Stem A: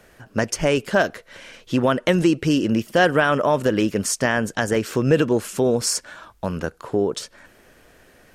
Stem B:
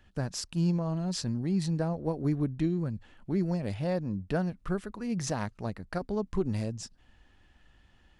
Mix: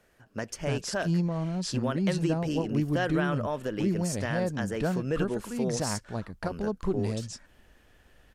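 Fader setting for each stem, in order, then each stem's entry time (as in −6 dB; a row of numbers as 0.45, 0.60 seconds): −13.0, +0.5 decibels; 0.00, 0.50 seconds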